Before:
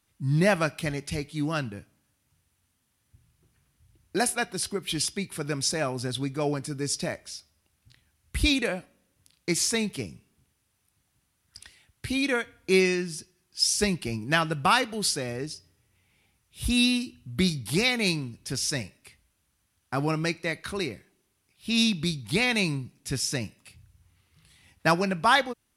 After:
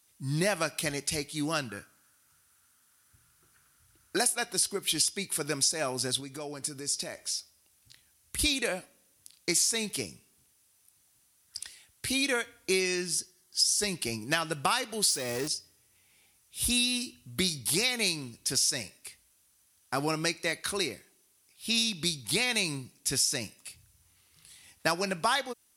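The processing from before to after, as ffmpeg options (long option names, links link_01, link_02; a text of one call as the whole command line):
ffmpeg -i in.wav -filter_complex "[0:a]asettb=1/sr,asplit=3[link_01][link_02][link_03];[link_01]atrim=end=1.694[link_04];[link_02]atrim=start=1.69:end=4.17,asetpts=PTS-STARTPTS,afade=type=in:duration=0.004:curve=qsin,afade=type=out:start_time=2.476:duration=0.004:curve=qsin,equalizer=frequency=1400:width_type=o:width=0.56:gain=14[link_05];[link_03]atrim=start=4.166[link_06];[link_04][link_05]acrossfade=duration=0.004:curve1=hsin:curve2=qsin[link_07];[link_07][link_06]acrossfade=duration=0.004:curve1=qsin:curve2=hsin,asettb=1/sr,asplit=3[link_08][link_09][link_10];[link_08]atrim=end=6.204[link_11];[link_09]atrim=start=6.2:end=8.39,asetpts=PTS-STARTPTS,afade=type=in:duration=0.004:curve=qsin,afade=type=out:start_time=2.186:duration=0.004:curve=qsin,acompressor=threshold=-35dB:ratio=4:attack=3.2:release=140:knee=1:detection=peak[link_12];[link_10]atrim=start=8.386[link_13];[link_11][link_12]acrossfade=duration=0.004:curve1=hsin:curve2=qsin[link_14];[link_14][link_13]acrossfade=duration=0.004:curve1=qsin:curve2=hsin,asettb=1/sr,asplit=3[link_15][link_16][link_17];[link_15]atrim=end=13.154[link_18];[link_16]atrim=start=13.15:end=13.84,asetpts=PTS-STARTPTS,afade=type=in:duration=0.004:curve=qsin,afade=type=out:start_time=0.686:duration=0.004:curve=qsin,asuperstop=centerf=2500:order=4:qfactor=7.5[link_19];[link_17]atrim=start=13.836[link_20];[link_18][link_19]acrossfade=duration=0.004:curve1=hsin:curve2=qsin[link_21];[link_21][link_20]acrossfade=duration=0.004:curve1=qsin:curve2=hsin,asettb=1/sr,asplit=3[link_22][link_23][link_24];[link_22]atrim=end=15.084[link_25];[link_23]atrim=start=15.08:end=15.48,asetpts=PTS-STARTPTS,afade=type=in:duration=0.004:curve=qsin,afade=type=out:start_time=0.396:duration=0.004:curve=qsin,aeval=exprs='val(0)+0.5*0.0168*sgn(val(0))':channel_layout=same[link_26];[link_24]atrim=start=15.476[link_27];[link_25][link_26]acrossfade=duration=0.004:curve1=hsin:curve2=qsin[link_28];[link_28][link_27]acrossfade=duration=0.004:curve1=qsin:curve2=hsin,bass=frequency=250:gain=-8,treble=frequency=4000:gain=10,acompressor=threshold=-24dB:ratio=5" out.wav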